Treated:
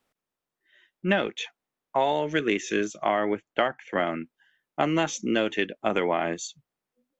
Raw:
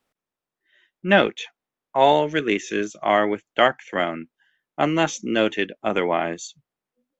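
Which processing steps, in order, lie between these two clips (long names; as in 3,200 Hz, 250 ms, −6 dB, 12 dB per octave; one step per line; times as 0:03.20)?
0:03.08–0:04.05: high-shelf EQ 5,100 Hz → 3,900 Hz −12 dB
downward compressor 12 to 1, threshold −19 dBFS, peak gain reduction 10.5 dB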